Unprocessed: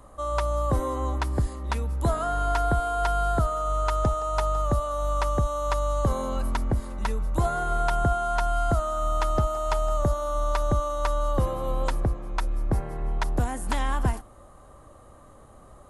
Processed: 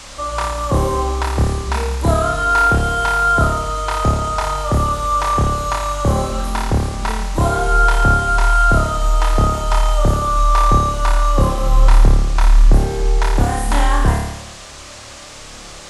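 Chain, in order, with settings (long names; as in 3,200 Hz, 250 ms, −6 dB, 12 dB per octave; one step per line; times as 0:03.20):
flutter between parallel walls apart 4.8 metres, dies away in 0.9 s
noise in a band 640–7,900 Hz −44 dBFS
level +6 dB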